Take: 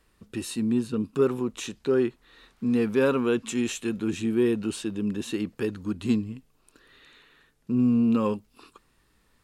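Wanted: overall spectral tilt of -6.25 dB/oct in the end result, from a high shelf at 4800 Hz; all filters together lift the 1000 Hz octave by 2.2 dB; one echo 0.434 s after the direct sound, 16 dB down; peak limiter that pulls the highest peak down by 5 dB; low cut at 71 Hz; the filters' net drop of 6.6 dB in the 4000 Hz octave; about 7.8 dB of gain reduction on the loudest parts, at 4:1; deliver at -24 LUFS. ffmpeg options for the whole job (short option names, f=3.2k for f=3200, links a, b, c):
-af "highpass=71,equalizer=f=1k:t=o:g=3.5,equalizer=f=4k:t=o:g=-6,highshelf=f=4.8k:g=-6.5,acompressor=threshold=-27dB:ratio=4,alimiter=limit=-23.5dB:level=0:latency=1,aecho=1:1:434:0.158,volume=9.5dB"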